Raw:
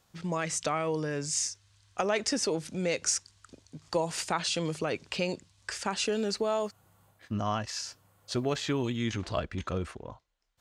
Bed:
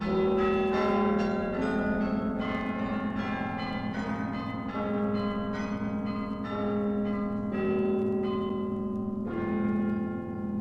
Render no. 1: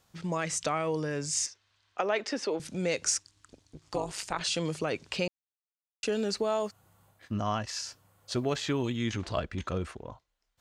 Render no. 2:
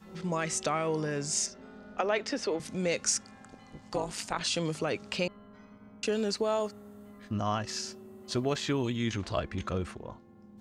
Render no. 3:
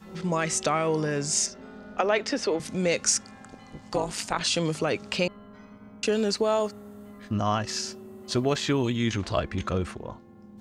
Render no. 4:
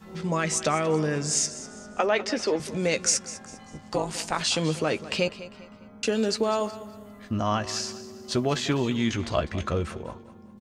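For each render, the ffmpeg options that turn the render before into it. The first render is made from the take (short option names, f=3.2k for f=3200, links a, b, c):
-filter_complex "[0:a]asettb=1/sr,asplit=3[a][b][c];[a]atrim=end=1.464[d];[b]atrim=start=1.46:end=2.6,asetpts=PTS-STARTPTS,afade=t=in:d=0.004:c=qsin,afade=t=out:st=1.136:d=0.004:c=qsin,acrossover=split=240 4500:gain=0.158 1 0.141[e][f][g];[e][f][g]amix=inputs=3:normalize=0[h];[c]atrim=start=2.596[i];[d][h]acrossfade=d=0.004:c1=hsin:c2=qsin[j];[j][i]acrossfade=d=0.004:c1=qsin:c2=hsin,asettb=1/sr,asplit=3[k][l][m];[k]atrim=end=3.174[n];[l]atrim=start=3.17:end=4.41,asetpts=PTS-STARTPTS,afade=t=in:d=0.004:c=qsin,afade=t=out:st=1.236:d=0.004:c=qsin,tremolo=f=210:d=0.824[o];[m]atrim=start=4.406[p];[n][o]acrossfade=d=0.004:c1=hsin:c2=qsin[q];[q][p]acrossfade=d=0.004:c1=qsin:c2=hsin,asplit=3[r][s][t];[r]atrim=end=5.28,asetpts=PTS-STARTPTS,afade=t=out:st=5.276:d=0.004:c=hsin[u];[s]atrim=start=5.28:end=6.03,asetpts=PTS-STARTPTS,volume=0[v];[t]atrim=start=6.03,asetpts=PTS-STARTPTS,afade=t=in:d=0.004:c=hsin[w];[u][v][w]concat=n=3:v=0:a=1"
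-filter_complex "[1:a]volume=-21dB[a];[0:a][a]amix=inputs=2:normalize=0"
-af "volume=5dB"
-filter_complex "[0:a]asplit=2[a][b];[b]adelay=13,volume=-10.5dB[c];[a][c]amix=inputs=2:normalize=0,aecho=1:1:200|400|600:0.168|0.0604|0.0218"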